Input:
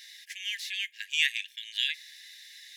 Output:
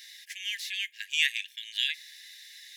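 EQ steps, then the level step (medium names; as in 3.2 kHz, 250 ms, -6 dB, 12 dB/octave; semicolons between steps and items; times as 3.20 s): treble shelf 10 kHz +4 dB; 0.0 dB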